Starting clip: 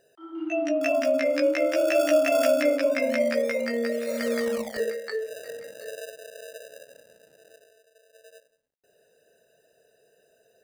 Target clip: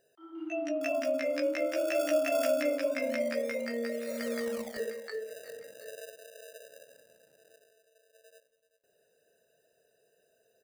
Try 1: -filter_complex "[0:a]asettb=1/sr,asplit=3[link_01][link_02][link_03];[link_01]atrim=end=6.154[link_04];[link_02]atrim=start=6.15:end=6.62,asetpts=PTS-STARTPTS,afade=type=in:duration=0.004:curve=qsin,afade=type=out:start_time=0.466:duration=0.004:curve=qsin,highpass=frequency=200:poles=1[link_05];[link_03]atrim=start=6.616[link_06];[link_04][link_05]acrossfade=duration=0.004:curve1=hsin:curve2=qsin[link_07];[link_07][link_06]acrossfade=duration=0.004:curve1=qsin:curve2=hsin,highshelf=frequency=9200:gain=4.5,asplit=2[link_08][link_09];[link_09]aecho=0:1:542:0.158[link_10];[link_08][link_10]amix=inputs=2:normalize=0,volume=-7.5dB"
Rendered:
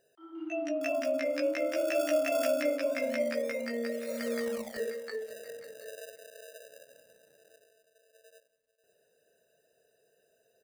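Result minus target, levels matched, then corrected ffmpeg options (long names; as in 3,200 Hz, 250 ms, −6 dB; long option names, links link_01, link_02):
echo 158 ms late
-filter_complex "[0:a]asettb=1/sr,asplit=3[link_01][link_02][link_03];[link_01]atrim=end=6.154[link_04];[link_02]atrim=start=6.15:end=6.62,asetpts=PTS-STARTPTS,afade=type=in:duration=0.004:curve=qsin,afade=type=out:start_time=0.466:duration=0.004:curve=qsin,highpass=frequency=200:poles=1[link_05];[link_03]atrim=start=6.616[link_06];[link_04][link_05]acrossfade=duration=0.004:curve1=hsin:curve2=qsin[link_07];[link_07][link_06]acrossfade=duration=0.004:curve1=qsin:curve2=hsin,highshelf=frequency=9200:gain=4.5,asplit=2[link_08][link_09];[link_09]aecho=0:1:384:0.158[link_10];[link_08][link_10]amix=inputs=2:normalize=0,volume=-7.5dB"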